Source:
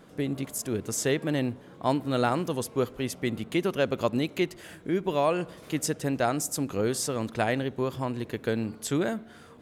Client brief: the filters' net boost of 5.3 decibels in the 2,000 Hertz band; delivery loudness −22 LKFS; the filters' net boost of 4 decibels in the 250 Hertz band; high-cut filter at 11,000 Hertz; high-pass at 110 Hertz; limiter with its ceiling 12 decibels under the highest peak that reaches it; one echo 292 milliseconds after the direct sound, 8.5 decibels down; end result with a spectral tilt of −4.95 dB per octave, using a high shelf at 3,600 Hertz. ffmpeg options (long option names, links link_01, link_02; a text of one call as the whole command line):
ffmpeg -i in.wav -af "highpass=110,lowpass=11000,equalizer=frequency=250:width_type=o:gain=5,equalizer=frequency=2000:width_type=o:gain=7.5,highshelf=frequency=3600:gain=-3,alimiter=limit=-19dB:level=0:latency=1,aecho=1:1:292:0.376,volume=8dB" out.wav